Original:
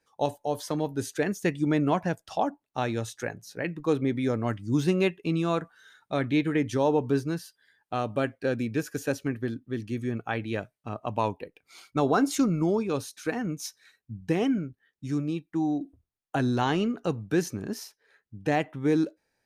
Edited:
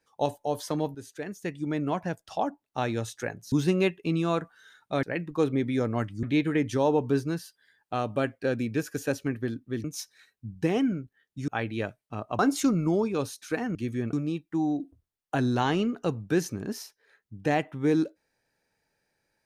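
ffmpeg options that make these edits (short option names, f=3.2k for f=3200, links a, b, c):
-filter_complex "[0:a]asplit=10[a][b][c][d][e][f][g][h][i][j];[a]atrim=end=0.95,asetpts=PTS-STARTPTS,afade=t=out:st=0.946:d=0.004:c=hsin:silence=0.237137[k];[b]atrim=start=0.95:end=3.522,asetpts=PTS-STARTPTS,afade=t=in:d=1.91:silence=0.237137[l];[c]atrim=start=4.718:end=6.232[m];[d]atrim=start=3.518:end=4.722[n];[e]atrim=start=6.228:end=9.842[o];[f]atrim=start=13.498:end=15.142[p];[g]atrim=start=10.218:end=11.132[q];[h]atrim=start=12.138:end=13.502[r];[i]atrim=start=9.838:end=10.222[s];[j]atrim=start=15.138[t];[k][l]concat=n=2:v=0:a=1[u];[u][m]acrossfade=d=0.004:c1=hsin:c2=hsin[v];[v][n]acrossfade=d=0.004:c1=hsin:c2=hsin[w];[w][o]acrossfade=d=0.004:c1=hsin:c2=hsin[x];[x][p]acrossfade=d=0.004:c1=hsin:c2=hsin[y];[y][q]acrossfade=d=0.004:c1=hsin:c2=hsin[z];[z][r]acrossfade=d=0.004:c1=hsin:c2=hsin[aa];[aa][s]acrossfade=d=0.004:c1=hsin:c2=hsin[ab];[ab][t]acrossfade=d=0.004:c1=hsin:c2=hsin"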